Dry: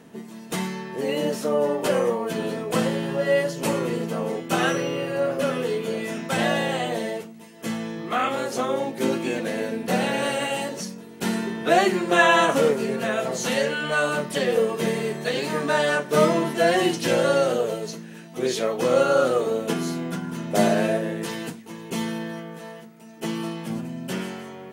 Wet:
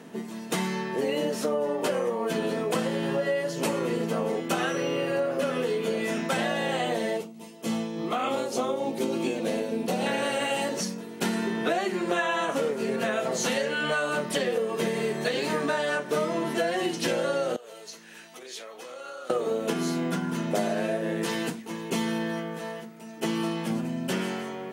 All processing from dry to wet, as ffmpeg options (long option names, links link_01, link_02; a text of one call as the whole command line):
ffmpeg -i in.wav -filter_complex "[0:a]asettb=1/sr,asplit=3[link_01][link_02][link_03];[link_01]atrim=end=7.174[link_04];[link_02]atrim=start=7.17:end=10.06,asetpts=PTS-STARTPTS,afade=type=in:duration=0.004:curve=qsin,afade=type=out:start_time=2.886:duration=0.004:curve=qsin,equalizer=frequency=1700:width_type=o:width=0.66:gain=-10,tremolo=f=3.4:d=0.43[link_05];[link_03]atrim=start=10.056[link_06];[link_04][link_05]acrossfade=duration=0.004:curve1=hsin:curve2=qsin[link_07];[link_07][link_06]acrossfade=duration=0.004:curve1=qsin:curve2=hsin,asettb=1/sr,asplit=3[link_08][link_09][link_10];[link_08]atrim=end=17.564[link_11];[link_09]atrim=start=17.56:end=19.3,asetpts=PTS-STARTPTS,afade=type=in:duration=0.004:curve=qsin,afade=type=out:start_time=1.736:duration=0.004:curve=qsin,acompressor=threshold=-37dB:ratio=4:attack=3.2:release=140:knee=1:detection=peak,highpass=frequency=1400:poles=1[link_12];[link_10]atrim=start=19.296[link_13];[link_11][link_12]acrossfade=duration=0.004:curve1=hsin:curve2=qsin[link_14];[link_14][link_13]acrossfade=duration=0.004:curve1=qsin:curve2=hsin,highpass=160,highshelf=frequency=11000:gain=-4.5,acompressor=threshold=-27dB:ratio=10,volume=3.5dB" out.wav